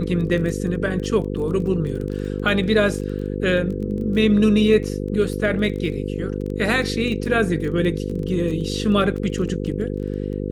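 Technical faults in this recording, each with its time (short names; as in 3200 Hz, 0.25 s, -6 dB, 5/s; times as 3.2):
buzz 50 Hz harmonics 10 -26 dBFS
crackle 16/s -28 dBFS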